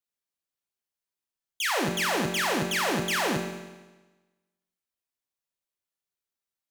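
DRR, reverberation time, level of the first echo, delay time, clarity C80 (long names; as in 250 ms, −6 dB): 2.5 dB, 1.2 s, no echo audible, no echo audible, 7.5 dB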